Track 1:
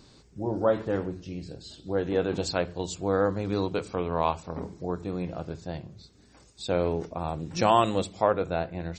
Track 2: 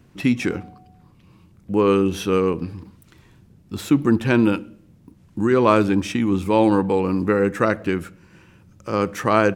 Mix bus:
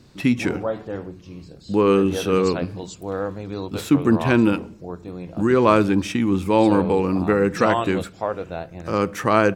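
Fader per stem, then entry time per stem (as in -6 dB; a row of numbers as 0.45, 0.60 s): -2.0, 0.0 dB; 0.00, 0.00 s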